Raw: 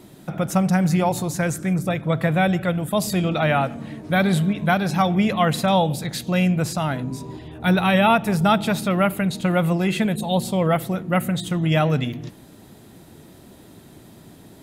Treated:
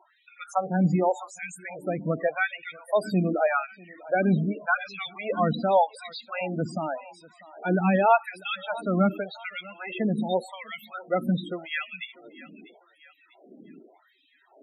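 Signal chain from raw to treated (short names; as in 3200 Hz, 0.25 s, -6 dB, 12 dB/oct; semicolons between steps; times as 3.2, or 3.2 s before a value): LFO high-pass sine 0.86 Hz 210–2600 Hz; thinning echo 0.645 s, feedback 49%, high-pass 630 Hz, level -16.5 dB; loudest bins only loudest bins 16; gain -5.5 dB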